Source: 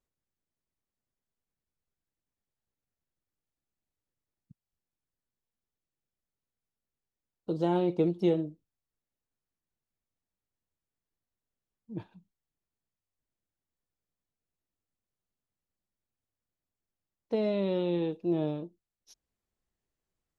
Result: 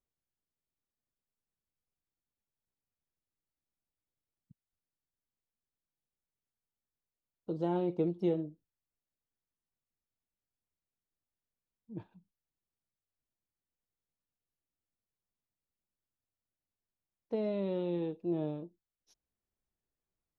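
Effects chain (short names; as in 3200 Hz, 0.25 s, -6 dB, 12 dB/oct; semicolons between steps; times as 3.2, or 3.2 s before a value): high shelf 2400 Hz -8 dB; gain -4.5 dB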